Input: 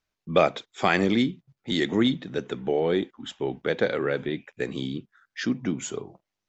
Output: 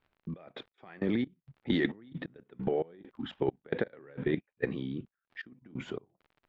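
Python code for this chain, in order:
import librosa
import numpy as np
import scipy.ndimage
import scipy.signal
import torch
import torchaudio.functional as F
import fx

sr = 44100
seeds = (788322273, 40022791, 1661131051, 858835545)

y = fx.dynamic_eq(x, sr, hz=1800.0, q=6.6, threshold_db=-47.0, ratio=4.0, max_db=5)
y = fx.level_steps(y, sr, step_db=14)
y = fx.dmg_crackle(y, sr, seeds[0], per_s=55.0, level_db=-50.0)
y = fx.air_absorb(y, sr, metres=400.0)
y = fx.over_compress(y, sr, threshold_db=-31.0, ratio=-0.5)
y = fx.step_gate(y, sr, bpm=133, pattern='xxx..x...xx..x', floor_db=-24.0, edge_ms=4.5)
y = F.gain(torch.from_numpy(y), 4.5).numpy()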